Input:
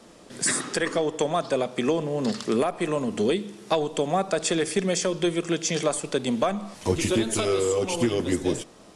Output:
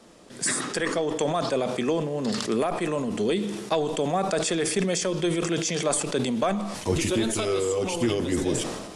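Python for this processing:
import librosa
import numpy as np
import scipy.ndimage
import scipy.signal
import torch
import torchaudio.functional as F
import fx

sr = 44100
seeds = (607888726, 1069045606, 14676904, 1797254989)

y = fx.sustainer(x, sr, db_per_s=43.0)
y = y * 10.0 ** (-2.0 / 20.0)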